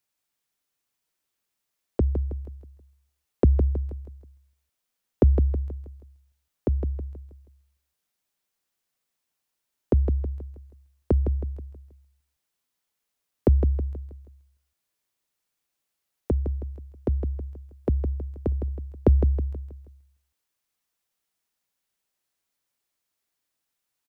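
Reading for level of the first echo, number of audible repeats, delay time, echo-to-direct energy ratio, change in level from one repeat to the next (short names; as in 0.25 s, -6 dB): -8.0 dB, 4, 0.16 s, -7.0 dB, -7.5 dB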